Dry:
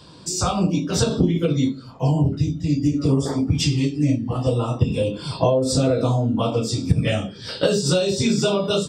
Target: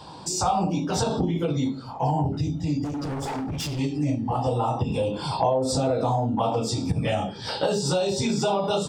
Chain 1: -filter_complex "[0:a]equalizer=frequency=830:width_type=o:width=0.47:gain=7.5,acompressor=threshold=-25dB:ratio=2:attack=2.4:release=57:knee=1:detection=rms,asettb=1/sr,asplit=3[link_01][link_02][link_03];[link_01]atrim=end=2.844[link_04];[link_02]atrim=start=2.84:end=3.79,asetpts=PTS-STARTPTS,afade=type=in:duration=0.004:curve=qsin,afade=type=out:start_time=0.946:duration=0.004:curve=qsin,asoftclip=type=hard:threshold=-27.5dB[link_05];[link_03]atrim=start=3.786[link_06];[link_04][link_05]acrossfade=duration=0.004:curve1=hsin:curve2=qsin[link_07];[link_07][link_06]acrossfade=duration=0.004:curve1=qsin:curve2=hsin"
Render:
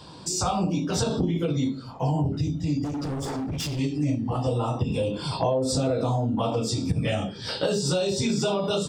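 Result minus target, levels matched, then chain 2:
1,000 Hz band −4.5 dB
-filter_complex "[0:a]equalizer=frequency=830:width_type=o:width=0.47:gain=19,acompressor=threshold=-25dB:ratio=2:attack=2.4:release=57:knee=1:detection=rms,asettb=1/sr,asplit=3[link_01][link_02][link_03];[link_01]atrim=end=2.844[link_04];[link_02]atrim=start=2.84:end=3.79,asetpts=PTS-STARTPTS,afade=type=in:duration=0.004:curve=qsin,afade=type=out:start_time=0.946:duration=0.004:curve=qsin,asoftclip=type=hard:threshold=-27.5dB[link_05];[link_03]atrim=start=3.786[link_06];[link_04][link_05]acrossfade=duration=0.004:curve1=hsin:curve2=qsin[link_07];[link_07][link_06]acrossfade=duration=0.004:curve1=qsin:curve2=hsin"

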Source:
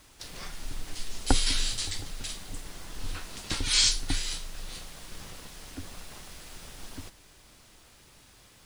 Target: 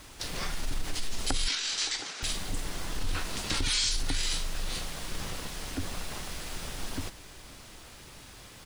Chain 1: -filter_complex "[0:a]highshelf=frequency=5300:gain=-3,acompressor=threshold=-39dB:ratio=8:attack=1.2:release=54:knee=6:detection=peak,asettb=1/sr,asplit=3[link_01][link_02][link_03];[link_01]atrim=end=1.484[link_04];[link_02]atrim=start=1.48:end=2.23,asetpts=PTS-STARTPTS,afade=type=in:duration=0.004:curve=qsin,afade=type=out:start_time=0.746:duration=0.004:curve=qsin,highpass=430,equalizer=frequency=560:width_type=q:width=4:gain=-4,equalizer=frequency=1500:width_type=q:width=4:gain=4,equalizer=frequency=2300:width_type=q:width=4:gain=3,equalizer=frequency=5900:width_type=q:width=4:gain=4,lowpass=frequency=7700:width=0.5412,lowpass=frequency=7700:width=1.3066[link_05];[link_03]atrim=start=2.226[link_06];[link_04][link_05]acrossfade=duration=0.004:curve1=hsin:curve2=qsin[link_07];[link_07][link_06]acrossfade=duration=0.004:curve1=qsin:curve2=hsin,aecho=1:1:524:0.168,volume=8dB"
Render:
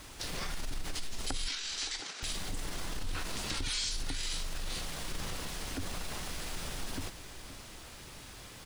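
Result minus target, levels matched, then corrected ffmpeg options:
echo-to-direct +11.5 dB; downward compressor: peak gain reduction +6.5 dB
-filter_complex "[0:a]highshelf=frequency=5300:gain=-3,acompressor=threshold=-31.5dB:ratio=8:attack=1.2:release=54:knee=6:detection=peak,asettb=1/sr,asplit=3[link_01][link_02][link_03];[link_01]atrim=end=1.484[link_04];[link_02]atrim=start=1.48:end=2.23,asetpts=PTS-STARTPTS,afade=type=in:duration=0.004:curve=qsin,afade=type=out:start_time=0.746:duration=0.004:curve=qsin,highpass=430,equalizer=frequency=560:width_type=q:width=4:gain=-4,equalizer=frequency=1500:width_type=q:width=4:gain=4,equalizer=frequency=2300:width_type=q:width=4:gain=3,equalizer=frequency=5900:width_type=q:width=4:gain=4,lowpass=frequency=7700:width=0.5412,lowpass=frequency=7700:width=1.3066[link_05];[link_03]atrim=start=2.226[link_06];[link_04][link_05]acrossfade=duration=0.004:curve1=hsin:curve2=qsin[link_07];[link_07][link_06]acrossfade=duration=0.004:curve1=qsin:curve2=hsin,aecho=1:1:524:0.0447,volume=8dB"

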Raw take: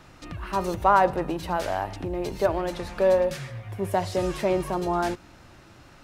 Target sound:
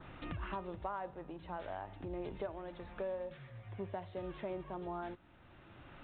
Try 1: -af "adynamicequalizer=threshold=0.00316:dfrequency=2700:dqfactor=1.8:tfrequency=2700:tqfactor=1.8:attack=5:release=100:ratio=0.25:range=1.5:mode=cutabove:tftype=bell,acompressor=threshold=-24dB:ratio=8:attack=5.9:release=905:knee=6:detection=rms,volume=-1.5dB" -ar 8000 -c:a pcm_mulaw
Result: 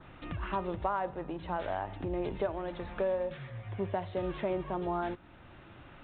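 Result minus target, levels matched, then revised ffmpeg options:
downward compressor: peak gain reduction −9 dB
-af "adynamicequalizer=threshold=0.00316:dfrequency=2700:dqfactor=1.8:tfrequency=2700:tqfactor=1.8:attack=5:release=100:ratio=0.25:range=1.5:mode=cutabove:tftype=bell,acompressor=threshold=-34dB:ratio=8:attack=5.9:release=905:knee=6:detection=rms,volume=-1.5dB" -ar 8000 -c:a pcm_mulaw

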